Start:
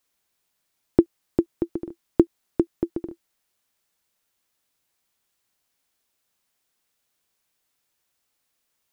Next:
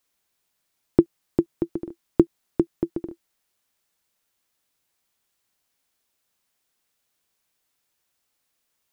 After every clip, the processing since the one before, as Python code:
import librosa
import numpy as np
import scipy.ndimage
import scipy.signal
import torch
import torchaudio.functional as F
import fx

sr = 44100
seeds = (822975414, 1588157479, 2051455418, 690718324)

y = fx.dynamic_eq(x, sr, hz=160.0, q=3.7, threshold_db=-43.0, ratio=4.0, max_db=6)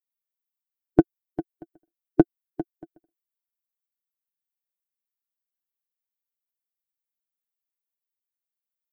y = fx.bin_expand(x, sr, power=3.0)
y = y + 0.57 * np.pad(y, (int(6.7 * sr / 1000.0), 0))[:len(y)]
y = fx.small_body(y, sr, hz=(700.0, 1500.0), ring_ms=35, db=17)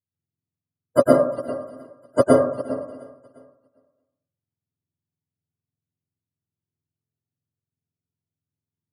y = fx.octave_mirror(x, sr, pivot_hz=430.0)
y = fx.echo_feedback(y, sr, ms=353, feedback_pct=52, wet_db=-23.5)
y = fx.rev_plate(y, sr, seeds[0], rt60_s=0.63, hf_ratio=0.4, predelay_ms=95, drr_db=-4.0)
y = y * 10.0 ** (5.5 / 20.0)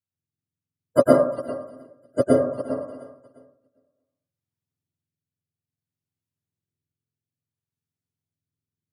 y = fx.rotary(x, sr, hz=0.6)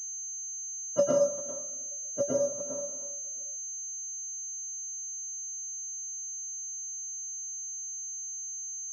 y = fx.comb_fb(x, sr, f0_hz=190.0, decay_s=0.2, harmonics='odd', damping=0.0, mix_pct=90)
y = fx.pwm(y, sr, carrier_hz=6300.0)